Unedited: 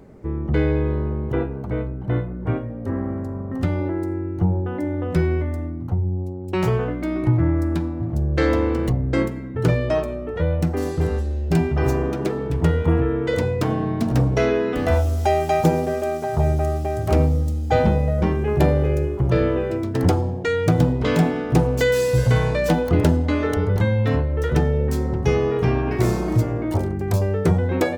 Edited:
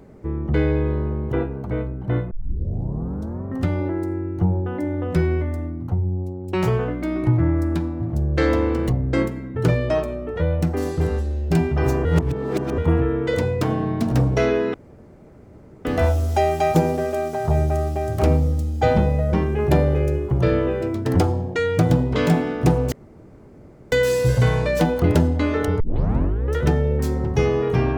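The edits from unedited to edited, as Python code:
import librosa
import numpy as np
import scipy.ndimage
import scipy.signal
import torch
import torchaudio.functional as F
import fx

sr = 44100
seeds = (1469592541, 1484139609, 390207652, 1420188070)

y = fx.edit(x, sr, fx.tape_start(start_s=2.31, length_s=1.14),
    fx.reverse_span(start_s=12.05, length_s=0.73),
    fx.insert_room_tone(at_s=14.74, length_s=1.11),
    fx.insert_room_tone(at_s=21.81, length_s=1.0),
    fx.tape_start(start_s=23.69, length_s=0.73), tone=tone)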